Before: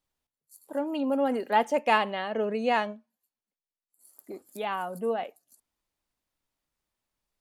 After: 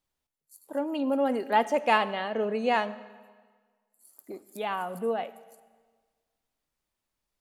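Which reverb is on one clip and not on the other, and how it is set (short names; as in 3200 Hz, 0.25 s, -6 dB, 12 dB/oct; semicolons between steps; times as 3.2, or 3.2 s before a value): digital reverb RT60 1.5 s, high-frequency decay 0.9×, pre-delay 25 ms, DRR 16.5 dB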